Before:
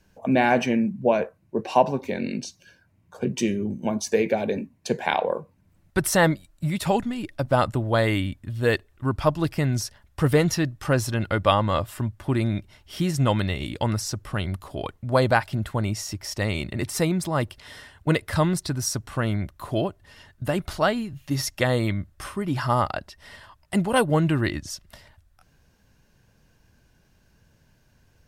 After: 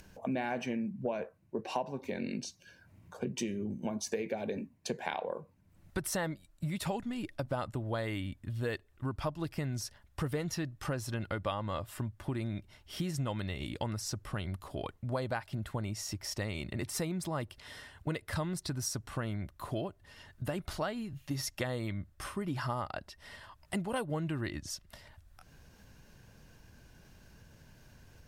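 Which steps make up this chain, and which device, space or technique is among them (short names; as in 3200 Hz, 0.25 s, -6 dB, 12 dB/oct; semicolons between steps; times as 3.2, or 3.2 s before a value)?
upward and downward compression (upward compressor, threshold -41 dBFS; compressor 4:1, threshold -27 dBFS, peak gain reduction 13 dB); gain -5.5 dB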